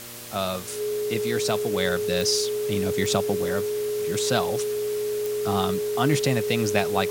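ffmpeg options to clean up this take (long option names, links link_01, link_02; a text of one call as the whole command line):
ffmpeg -i in.wav -af "adeclick=threshold=4,bandreject=frequency=118.5:width_type=h:width=4,bandreject=frequency=237:width_type=h:width=4,bandreject=frequency=355.5:width_type=h:width=4,bandreject=frequency=474:width_type=h:width=4,bandreject=frequency=592.5:width_type=h:width=4,bandreject=frequency=420:width=30,afwtdn=0.011" out.wav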